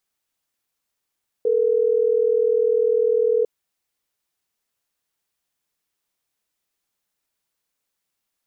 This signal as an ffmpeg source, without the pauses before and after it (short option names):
-f lavfi -i "aevalsrc='0.119*(sin(2*PI*440*t)+sin(2*PI*480*t))*clip(min(mod(t,6),2-mod(t,6))/0.005,0,1)':d=3.12:s=44100"